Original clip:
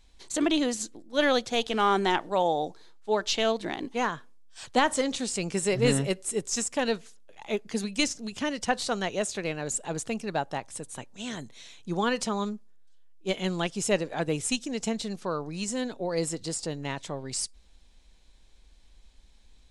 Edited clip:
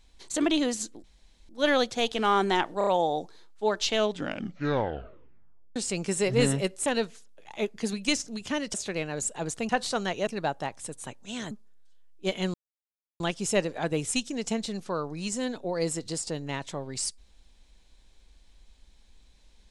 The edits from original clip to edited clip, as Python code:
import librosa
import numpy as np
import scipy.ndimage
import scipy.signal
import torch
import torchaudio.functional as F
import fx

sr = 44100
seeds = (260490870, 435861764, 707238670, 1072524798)

y = fx.edit(x, sr, fx.insert_room_tone(at_s=1.04, length_s=0.45),
    fx.stutter(start_s=2.33, slice_s=0.03, count=4),
    fx.tape_stop(start_s=3.41, length_s=1.81),
    fx.cut(start_s=6.32, length_s=0.45),
    fx.move(start_s=8.65, length_s=0.58, to_s=10.18),
    fx.cut(start_s=11.42, length_s=1.11),
    fx.insert_silence(at_s=13.56, length_s=0.66), tone=tone)